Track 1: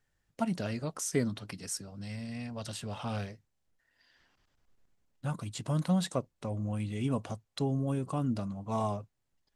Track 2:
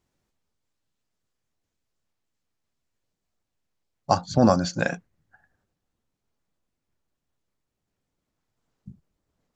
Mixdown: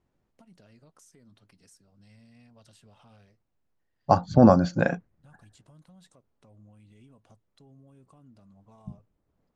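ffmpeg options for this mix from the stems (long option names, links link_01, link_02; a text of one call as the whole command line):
ffmpeg -i stem1.wav -i stem2.wav -filter_complex "[0:a]acompressor=threshold=-32dB:ratio=6,alimiter=level_in=6.5dB:limit=-24dB:level=0:latency=1:release=173,volume=-6.5dB,volume=-16dB[link_01];[1:a]lowpass=frequency=1100:poles=1,volume=3dB[link_02];[link_01][link_02]amix=inputs=2:normalize=0" out.wav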